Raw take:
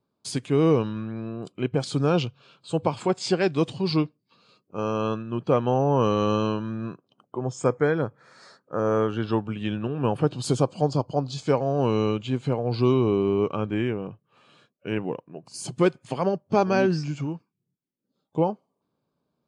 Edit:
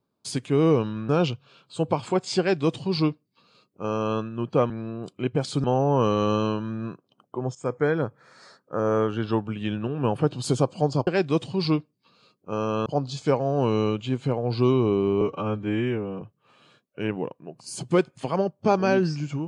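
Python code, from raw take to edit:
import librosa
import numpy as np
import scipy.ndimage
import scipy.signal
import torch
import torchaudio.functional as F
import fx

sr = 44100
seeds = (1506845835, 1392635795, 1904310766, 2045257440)

y = fx.edit(x, sr, fx.move(start_s=1.09, length_s=0.94, to_s=5.64),
    fx.duplicate(start_s=3.33, length_s=1.79, to_s=11.07),
    fx.fade_in_from(start_s=7.55, length_s=0.43, curve='qsin', floor_db=-16.0),
    fx.stretch_span(start_s=13.42, length_s=0.67, factor=1.5), tone=tone)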